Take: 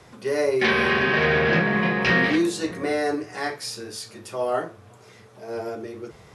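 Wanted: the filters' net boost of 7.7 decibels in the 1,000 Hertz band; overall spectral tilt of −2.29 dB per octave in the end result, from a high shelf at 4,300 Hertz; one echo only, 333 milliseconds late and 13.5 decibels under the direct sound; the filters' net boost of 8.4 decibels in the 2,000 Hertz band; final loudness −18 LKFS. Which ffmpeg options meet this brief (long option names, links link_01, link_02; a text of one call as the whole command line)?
ffmpeg -i in.wav -af "equalizer=frequency=1000:width_type=o:gain=8,equalizer=frequency=2000:width_type=o:gain=8,highshelf=frequency=4300:gain=-3,aecho=1:1:333:0.211,volume=-2dB" out.wav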